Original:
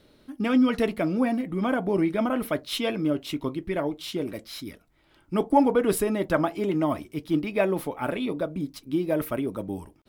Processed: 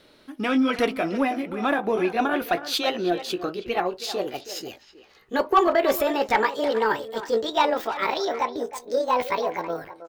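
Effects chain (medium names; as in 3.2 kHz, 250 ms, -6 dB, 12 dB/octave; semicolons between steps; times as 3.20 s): pitch bend over the whole clip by +9.5 st starting unshifted; overdrive pedal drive 12 dB, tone 6.6 kHz, clips at -7.5 dBFS; speakerphone echo 320 ms, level -12 dB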